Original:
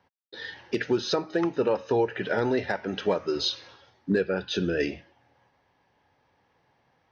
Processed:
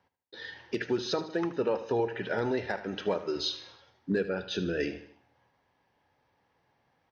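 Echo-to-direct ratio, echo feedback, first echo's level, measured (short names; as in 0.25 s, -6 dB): -12.5 dB, 46%, -13.5 dB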